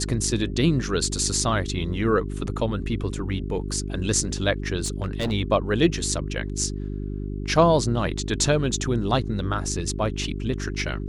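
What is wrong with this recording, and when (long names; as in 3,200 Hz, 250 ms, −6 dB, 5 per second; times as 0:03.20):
mains hum 50 Hz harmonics 8 −30 dBFS
0:04.84–0:05.33: clipping −21.5 dBFS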